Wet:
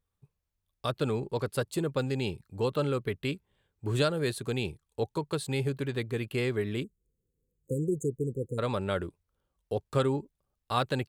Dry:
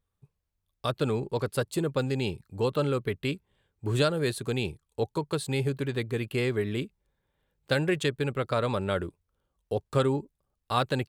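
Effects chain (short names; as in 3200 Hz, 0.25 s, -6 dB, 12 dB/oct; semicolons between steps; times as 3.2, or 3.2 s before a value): spectral delete 6.83–8.58, 530–6300 Hz; gain -2 dB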